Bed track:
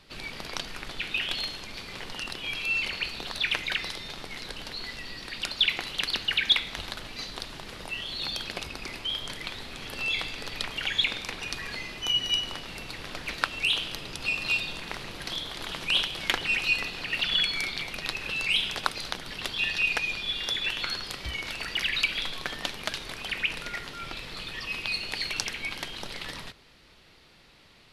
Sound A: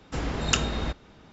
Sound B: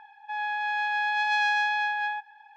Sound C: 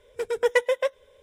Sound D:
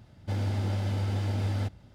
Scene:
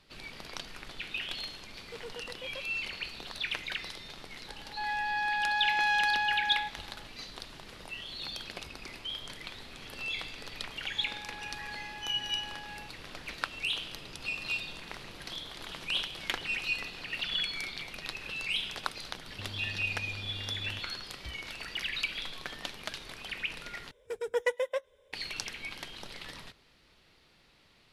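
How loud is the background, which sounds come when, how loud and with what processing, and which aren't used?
bed track -7 dB
1.73 add C -17 dB + limiter -19 dBFS
4.48 add B -3 dB
10.68 add B -17.5 dB + limiter -20 dBFS
19.11 add D -8 dB + compressor, threshold -33 dBFS
23.91 replace with C -8 dB
not used: A

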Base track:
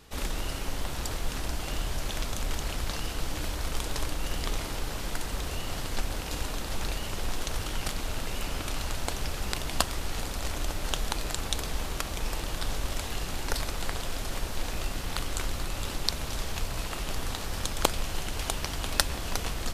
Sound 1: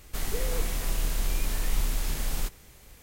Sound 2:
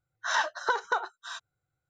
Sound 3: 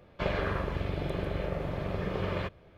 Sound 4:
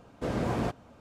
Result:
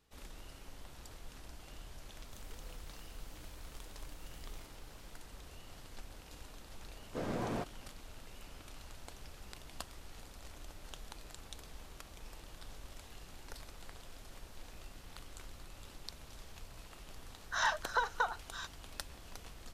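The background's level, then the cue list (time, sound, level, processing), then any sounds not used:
base track -19 dB
2.18 add 1 -18 dB + compressor 2.5:1, threshold -36 dBFS
6.93 add 4 -6.5 dB + low shelf 87 Hz -11 dB
17.28 add 2 -5 dB + steep high-pass 460 Hz
not used: 3

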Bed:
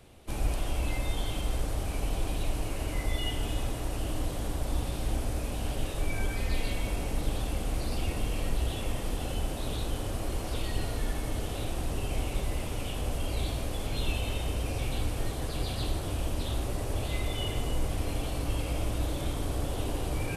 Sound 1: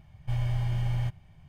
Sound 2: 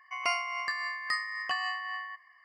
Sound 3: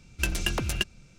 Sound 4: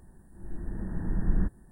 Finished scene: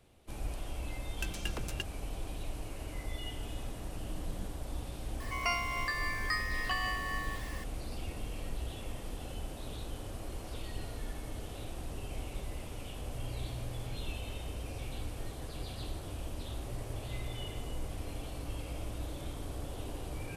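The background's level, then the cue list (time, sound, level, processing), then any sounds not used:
bed -9 dB
0.99 add 3 -11.5 dB
3 add 4 -16 dB
5.2 add 2 -3.5 dB + zero-crossing step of -40 dBFS
12.86 add 1 -16 dB
16.37 add 1 -16 dB

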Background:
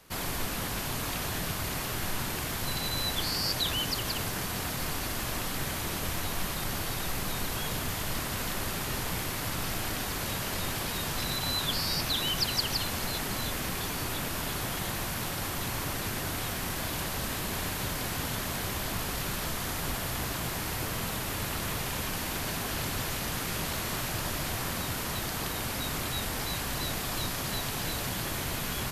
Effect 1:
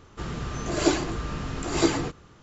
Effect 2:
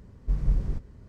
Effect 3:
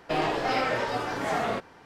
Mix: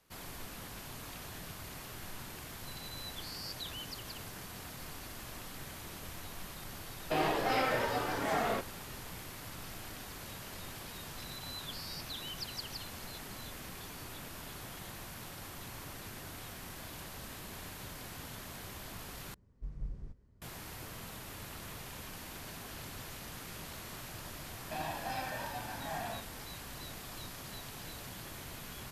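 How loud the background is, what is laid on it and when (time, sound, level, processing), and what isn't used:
background -13 dB
7.01 add 3 -4.5 dB
19.34 replace with 2 -16.5 dB
24.61 add 3 -15.5 dB + comb 1.2 ms, depth 90%
not used: 1

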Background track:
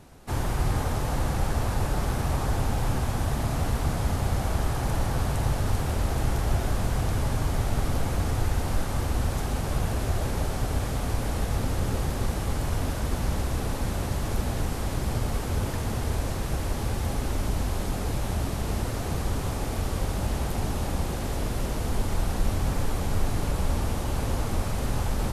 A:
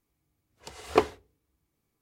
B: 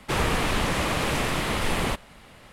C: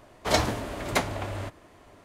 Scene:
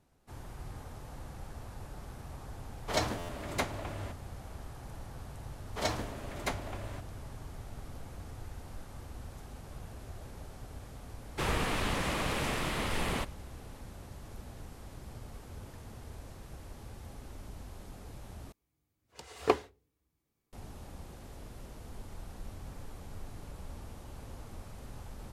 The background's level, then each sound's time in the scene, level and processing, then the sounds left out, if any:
background track -19 dB
2.63 add C -7.5 dB + stuck buffer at 0.55
5.51 add C -9.5 dB
11.29 add B -7.5 dB + expander -45 dBFS
18.52 replace with A -4.5 dB

